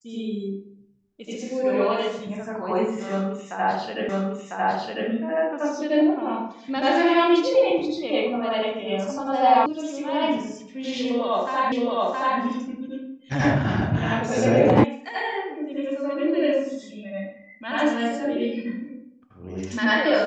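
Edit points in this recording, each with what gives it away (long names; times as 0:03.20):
0:04.09: the same again, the last 1 s
0:09.66: cut off before it has died away
0:11.72: the same again, the last 0.67 s
0:14.84: cut off before it has died away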